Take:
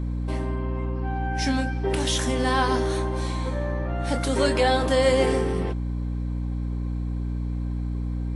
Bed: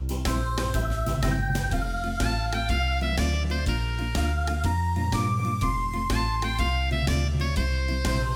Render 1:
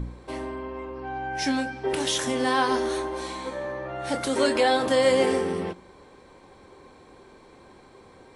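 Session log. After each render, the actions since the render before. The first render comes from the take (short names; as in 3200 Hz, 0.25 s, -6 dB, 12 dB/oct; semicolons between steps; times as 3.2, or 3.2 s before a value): de-hum 60 Hz, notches 7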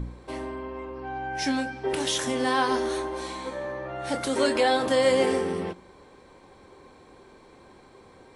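gain -1 dB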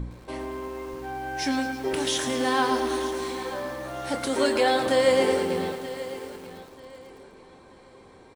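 feedback echo 0.933 s, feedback 28%, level -14.5 dB; lo-fi delay 0.11 s, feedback 80%, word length 7-bit, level -11.5 dB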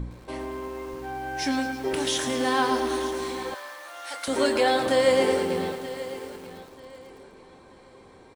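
3.54–4.28 HPF 1100 Hz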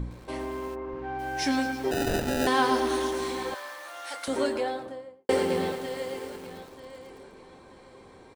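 0.74–1.18 LPF 1300 Hz -> 3200 Hz; 1.91–2.47 sample-rate reducer 1100 Hz; 3.89–5.29 studio fade out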